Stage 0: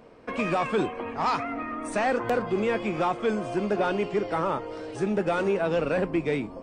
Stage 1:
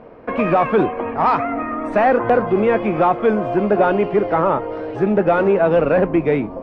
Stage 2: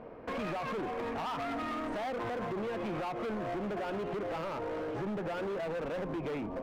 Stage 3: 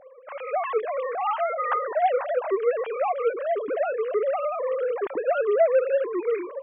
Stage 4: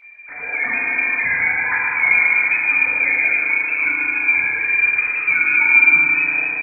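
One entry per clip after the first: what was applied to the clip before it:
low-pass filter 2,000 Hz 12 dB per octave; parametric band 650 Hz +3 dB; level +9 dB
brickwall limiter −13.5 dBFS, peak gain reduction 8.5 dB; downward compressor, threshold −22 dBFS, peak gain reduction 5.5 dB; gain into a clipping stage and back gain 27 dB; level −6.5 dB
three sine waves on the formant tracks; automatic gain control gain up to 11 dB
voice inversion scrambler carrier 2,900 Hz; on a send: single-tap delay 142 ms −9 dB; on the sum: feedback delay network reverb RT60 2.9 s, low-frequency decay 1.35×, high-frequency decay 0.65×, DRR −7 dB

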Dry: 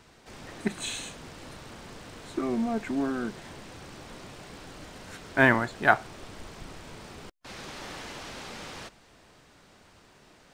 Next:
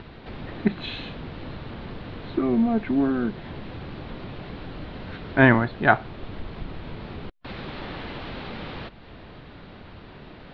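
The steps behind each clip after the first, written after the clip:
Butterworth low-pass 4,200 Hz 48 dB per octave
low-shelf EQ 350 Hz +9 dB
in parallel at 0 dB: upward compression, threshold −29 dBFS
on the sum: level −4.5 dB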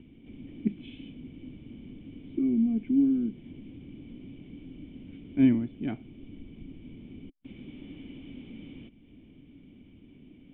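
formant resonators in series i

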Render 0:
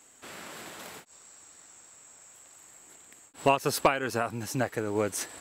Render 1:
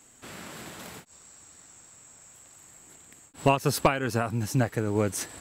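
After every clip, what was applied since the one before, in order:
bass and treble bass +10 dB, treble +1 dB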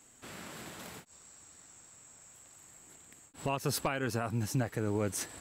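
brickwall limiter −17 dBFS, peak gain reduction 10 dB
level −4 dB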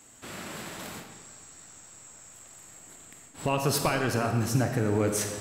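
comb and all-pass reverb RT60 1.5 s, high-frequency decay 0.8×, pre-delay 5 ms, DRR 4 dB
level +5.5 dB

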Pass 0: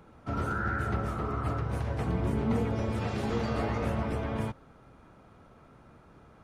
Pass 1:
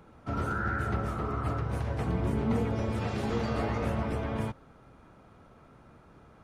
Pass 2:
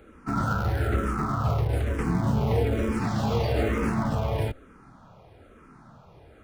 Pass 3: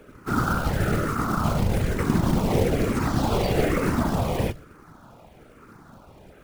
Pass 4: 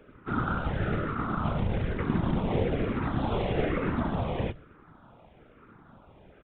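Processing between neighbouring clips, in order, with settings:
no processing that can be heard
in parallel at −9 dB: comparator with hysteresis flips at −30 dBFS; on the sum: frequency shifter mixed with the dry sound −1.1 Hz; level +7 dB
mains-hum notches 60/120 Hz; floating-point word with a short mantissa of 2 bits; random phases in short frames; level +3 dB
downsampling to 8,000 Hz; level −5.5 dB

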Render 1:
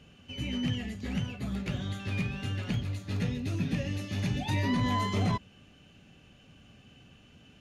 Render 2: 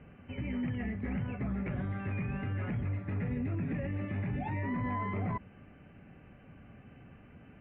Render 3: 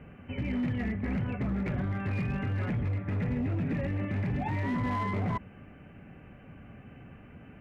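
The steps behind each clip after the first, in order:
brickwall limiter −30 dBFS, peak gain reduction 10.5 dB; elliptic low-pass filter 2,200 Hz, stop band 70 dB; level +4 dB
hard clipping −30.5 dBFS, distortion −19 dB; level +4.5 dB

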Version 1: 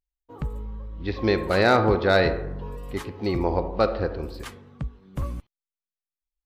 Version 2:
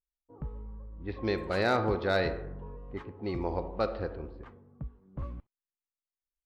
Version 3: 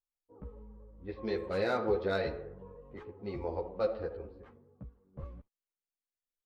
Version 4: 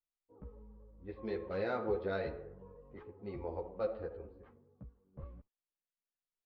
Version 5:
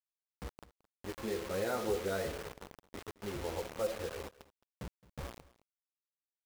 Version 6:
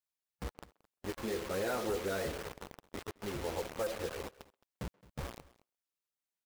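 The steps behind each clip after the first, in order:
low-pass that shuts in the quiet parts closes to 670 Hz, open at −17 dBFS; level −8.5 dB
parametric band 490 Hz +7.5 dB 0.62 octaves; string-ensemble chorus; level −4 dB
high-frequency loss of the air 200 metres; level −4 dB
in parallel at −2 dB: downward compressor 6 to 1, threshold −44 dBFS, peak gain reduction 14.5 dB; on the sum: bit reduction 7 bits; single-tap delay 217 ms −20.5 dB; level −1 dB
gain into a clipping stage and back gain 30 dB; harmonic and percussive parts rebalanced harmonic −5 dB; far-end echo of a speakerphone 130 ms, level −26 dB; level +3.5 dB

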